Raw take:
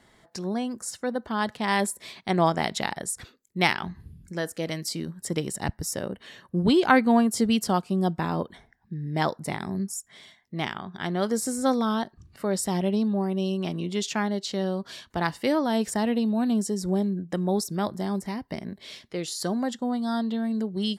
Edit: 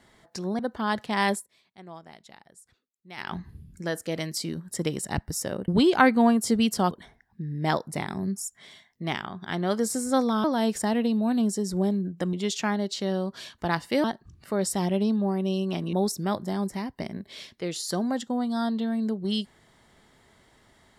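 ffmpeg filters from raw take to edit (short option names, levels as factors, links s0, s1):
-filter_complex "[0:a]asplit=10[s0][s1][s2][s3][s4][s5][s6][s7][s8][s9];[s0]atrim=end=0.592[s10];[s1]atrim=start=1.098:end=1.98,asetpts=PTS-STARTPTS,afade=t=out:st=0.712:d=0.17:silence=0.0794328[s11];[s2]atrim=start=1.98:end=3.67,asetpts=PTS-STARTPTS,volume=0.0794[s12];[s3]atrim=start=3.67:end=6.192,asetpts=PTS-STARTPTS,afade=t=in:d=0.17:silence=0.0794328[s13];[s4]atrim=start=6.578:end=7.812[s14];[s5]atrim=start=8.428:end=11.962[s15];[s6]atrim=start=15.558:end=17.452[s16];[s7]atrim=start=13.848:end=15.562[s17];[s8]atrim=start=11.958:end=13.852[s18];[s9]atrim=start=17.448[s19];[s11][s12][s13]concat=n=3:v=0:a=1[s20];[s10][s20]acrossfade=d=0.004:c1=hsin:c2=hsin[s21];[s21][s14]acrossfade=d=0.004:c1=hsin:c2=hsin[s22];[s22][s15]acrossfade=d=0.004:c1=hsin:c2=hsin[s23];[s23][s16]acrossfade=d=0.004:c1=hsin:c2=hsin[s24];[s24][s17]acrossfade=d=0.004:c1=hsin:c2=hsin[s25];[s25][s18]acrossfade=d=0.004:c1=hsin:c2=hsin[s26];[s26][s19]acrossfade=d=0.004:c1=hsin:c2=hsin"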